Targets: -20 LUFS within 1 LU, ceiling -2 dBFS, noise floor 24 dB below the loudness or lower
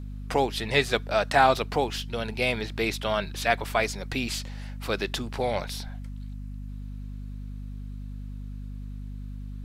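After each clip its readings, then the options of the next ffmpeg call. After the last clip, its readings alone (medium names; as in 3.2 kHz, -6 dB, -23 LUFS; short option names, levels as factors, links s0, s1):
hum 50 Hz; highest harmonic 250 Hz; hum level -34 dBFS; loudness -27.0 LUFS; peak level -6.0 dBFS; loudness target -20.0 LUFS
-> -af "bandreject=f=50:t=h:w=6,bandreject=f=100:t=h:w=6,bandreject=f=150:t=h:w=6,bandreject=f=200:t=h:w=6,bandreject=f=250:t=h:w=6"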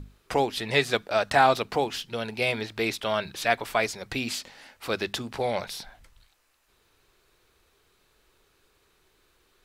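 hum not found; loudness -27.0 LUFS; peak level -6.0 dBFS; loudness target -20.0 LUFS
-> -af "volume=2.24,alimiter=limit=0.794:level=0:latency=1"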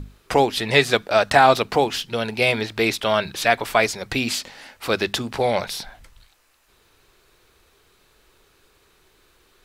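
loudness -20.5 LUFS; peak level -2.0 dBFS; noise floor -60 dBFS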